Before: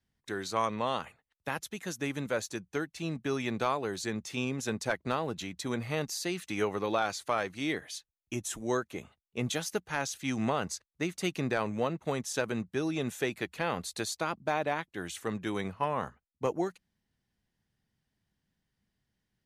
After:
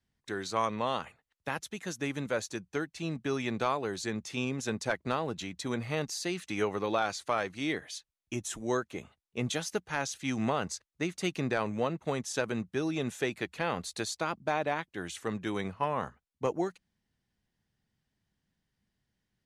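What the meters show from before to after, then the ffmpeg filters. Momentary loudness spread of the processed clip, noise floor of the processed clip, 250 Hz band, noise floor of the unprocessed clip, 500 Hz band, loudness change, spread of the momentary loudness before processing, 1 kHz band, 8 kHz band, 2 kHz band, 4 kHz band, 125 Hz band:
7 LU, -84 dBFS, 0.0 dB, -84 dBFS, 0.0 dB, 0.0 dB, 6 LU, 0.0 dB, -1.0 dB, 0.0 dB, 0.0 dB, 0.0 dB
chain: -af "lowpass=9.9k"

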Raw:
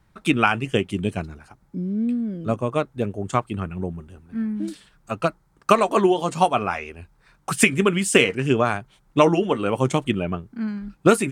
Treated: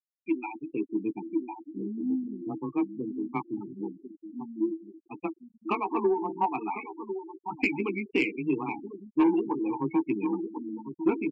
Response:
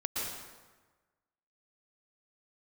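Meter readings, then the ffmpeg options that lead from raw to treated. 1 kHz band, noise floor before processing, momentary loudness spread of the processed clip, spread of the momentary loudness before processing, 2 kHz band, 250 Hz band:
-9.5 dB, -61 dBFS, 12 LU, 14 LU, -11.5 dB, -5.0 dB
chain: -filter_complex "[0:a]asplit=3[a][b][c];[a]bandpass=f=300:t=q:w=8,volume=0dB[d];[b]bandpass=f=870:t=q:w=8,volume=-6dB[e];[c]bandpass=f=2.24k:t=q:w=8,volume=-9dB[f];[d][e][f]amix=inputs=3:normalize=0,asplit=2[g][h];[h]adelay=1050,volume=-10dB,highshelf=f=4k:g=-23.6[i];[g][i]amix=inputs=2:normalize=0,dynaudnorm=f=440:g=3:m=11.5dB,highpass=f=72:p=1,asplit=2[j][k];[k]equalizer=f=500:t=o:w=0.27:g=7.5[l];[1:a]atrim=start_sample=2205,asetrate=42777,aresample=44100[m];[l][m]afir=irnorm=-1:irlink=0,volume=-21.5dB[n];[j][n]amix=inputs=2:normalize=0,asubboost=boost=2.5:cutoff=110,asplit=2[o][p];[p]adelay=16,volume=-6dB[q];[o][q]amix=inputs=2:normalize=0,afreqshift=17,afftfilt=real='re*gte(hypot(re,im),0.0794)':imag='im*gte(hypot(re,im),0.0794)':win_size=1024:overlap=0.75,asoftclip=type=tanh:threshold=-7dB,volume=-7dB"

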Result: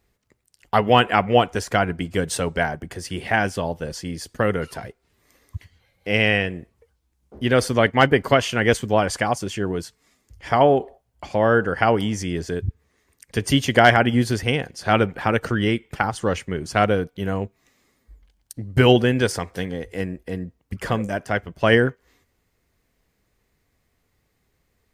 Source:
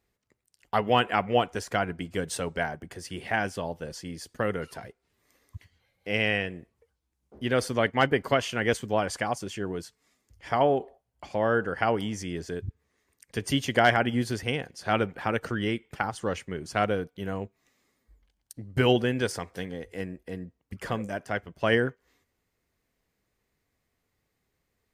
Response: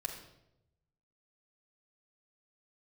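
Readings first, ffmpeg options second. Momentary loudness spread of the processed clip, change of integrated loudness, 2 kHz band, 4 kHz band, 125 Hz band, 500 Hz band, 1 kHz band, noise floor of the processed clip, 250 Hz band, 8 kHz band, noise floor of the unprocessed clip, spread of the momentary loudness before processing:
15 LU, +7.0 dB, +7.0 dB, +7.0 dB, +9.0 dB, +7.0 dB, +7.0 dB, -70 dBFS, +7.5 dB, +7.0 dB, -79 dBFS, 14 LU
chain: -af "lowshelf=f=90:g=6,volume=7dB"

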